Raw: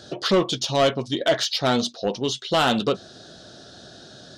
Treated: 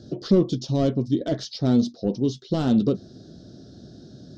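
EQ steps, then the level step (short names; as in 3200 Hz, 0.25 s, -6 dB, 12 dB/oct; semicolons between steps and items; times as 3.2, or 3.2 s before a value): EQ curve 280 Hz 0 dB, 870 Hz -20 dB, 2800 Hz -25 dB, 5300 Hz -13 dB, 10000 Hz -30 dB; +6.0 dB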